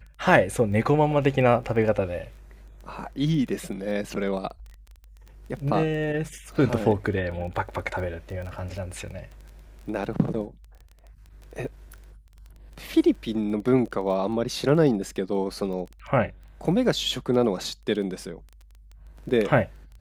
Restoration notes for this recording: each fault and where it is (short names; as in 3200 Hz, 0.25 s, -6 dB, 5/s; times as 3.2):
crackle 14/s -34 dBFS